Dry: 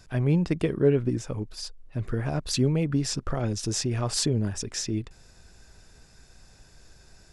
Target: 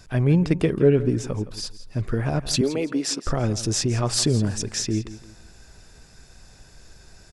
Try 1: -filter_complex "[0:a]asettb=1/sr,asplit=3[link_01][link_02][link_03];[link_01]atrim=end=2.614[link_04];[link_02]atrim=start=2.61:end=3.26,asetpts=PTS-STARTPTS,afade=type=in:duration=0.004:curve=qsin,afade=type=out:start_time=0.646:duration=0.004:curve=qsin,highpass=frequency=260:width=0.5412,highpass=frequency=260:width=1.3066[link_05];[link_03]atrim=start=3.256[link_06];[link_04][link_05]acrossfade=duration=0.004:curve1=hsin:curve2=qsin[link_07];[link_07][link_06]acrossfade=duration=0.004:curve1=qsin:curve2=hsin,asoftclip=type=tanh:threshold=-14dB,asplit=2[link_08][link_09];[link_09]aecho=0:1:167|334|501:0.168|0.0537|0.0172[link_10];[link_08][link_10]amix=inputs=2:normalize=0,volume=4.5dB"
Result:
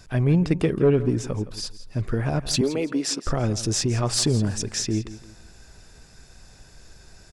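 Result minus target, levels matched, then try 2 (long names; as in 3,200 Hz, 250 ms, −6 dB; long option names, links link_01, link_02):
soft clipping: distortion +13 dB
-filter_complex "[0:a]asettb=1/sr,asplit=3[link_01][link_02][link_03];[link_01]atrim=end=2.614[link_04];[link_02]atrim=start=2.61:end=3.26,asetpts=PTS-STARTPTS,afade=type=in:duration=0.004:curve=qsin,afade=type=out:start_time=0.646:duration=0.004:curve=qsin,highpass=frequency=260:width=0.5412,highpass=frequency=260:width=1.3066[link_05];[link_03]atrim=start=3.256[link_06];[link_04][link_05]acrossfade=duration=0.004:curve1=hsin:curve2=qsin[link_07];[link_07][link_06]acrossfade=duration=0.004:curve1=qsin:curve2=hsin,asoftclip=type=tanh:threshold=-6dB,asplit=2[link_08][link_09];[link_09]aecho=0:1:167|334|501:0.168|0.0537|0.0172[link_10];[link_08][link_10]amix=inputs=2:normalize=0,volume=4.5dB"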